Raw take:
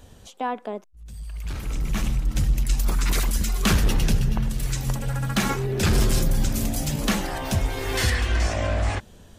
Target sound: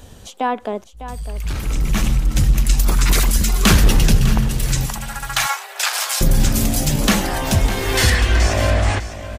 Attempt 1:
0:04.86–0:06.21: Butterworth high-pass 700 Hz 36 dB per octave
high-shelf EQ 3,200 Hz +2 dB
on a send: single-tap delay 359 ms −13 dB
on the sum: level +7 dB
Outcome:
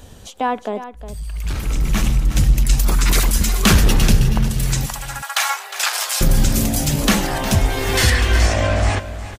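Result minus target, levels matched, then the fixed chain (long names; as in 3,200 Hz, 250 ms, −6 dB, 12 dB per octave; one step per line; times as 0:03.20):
echo 243 ms early
0:04.86–0:06.21: Butterworth high-pass 700 Hz 36 dB per octave
high-shelf EQ 3,200 Hz +2 dB
on a send: single-tap delay 602 ms −13 dB
on the sum: level +7 dB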